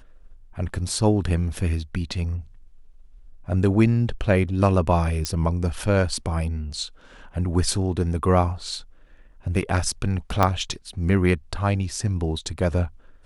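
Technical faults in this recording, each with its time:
5.25 s: pop -10 dBFS
10.43 s: pop -6 dBFS

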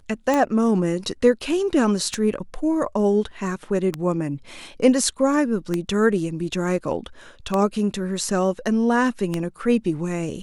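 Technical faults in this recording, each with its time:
tick 33 1/3 rpm -9 dBFS

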